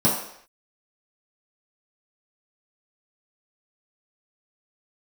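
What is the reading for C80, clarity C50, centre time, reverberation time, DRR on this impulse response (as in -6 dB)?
7.5 dB, 4.0 dB, 41 ms, not exponential, -8.5 dB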